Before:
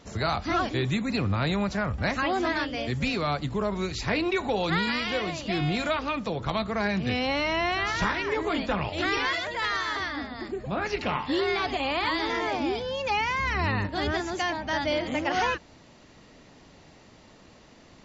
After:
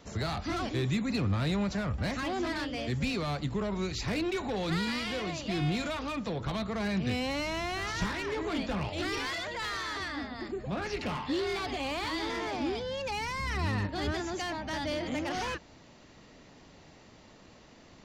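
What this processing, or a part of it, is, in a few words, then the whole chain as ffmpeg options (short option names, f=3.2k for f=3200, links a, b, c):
one-band saturation: -filter_complex "[0:a]acrossover=split=330|4400[a][b][c];[b]asoftclip=type=tanh:threshold=-31.5dB[d];[a][d][c]amix=inputs=3:normalize=0,volume=-2dB"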